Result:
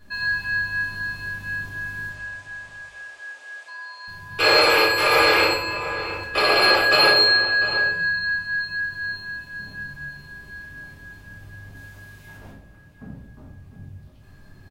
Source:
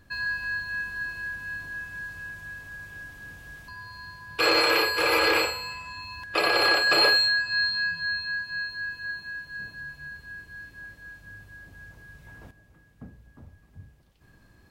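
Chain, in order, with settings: 2.09–4.08 s: Chebyshev band-pass 520–8400 Hz, order 3; 11.75–12.37 s: tilt EQ +1.5 dB/octave; echo from a far wall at 120 m, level -11 dB; simulated room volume 92 m³, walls mixed, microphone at 1.4 m

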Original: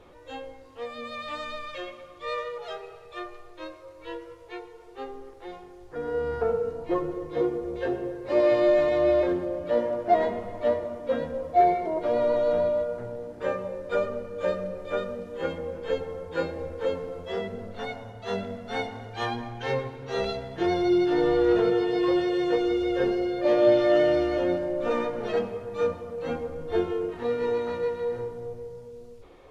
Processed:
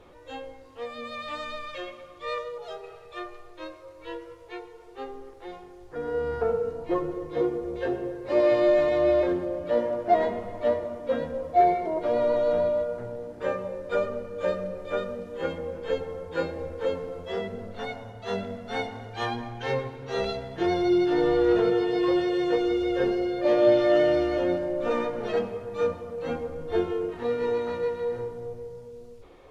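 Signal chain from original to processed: 2.38–2.84 s: peaking EQ 2 kHz -7.5 dB 1.6 oct

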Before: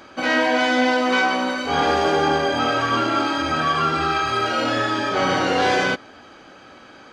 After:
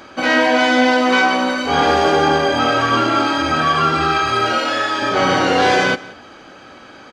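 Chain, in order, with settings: 4.58–5.02 s: high-pass 630 Hz 6 dB/octave; on a send: delay 178 ms -20.5 dB; on the sum: trim +4.5 dB

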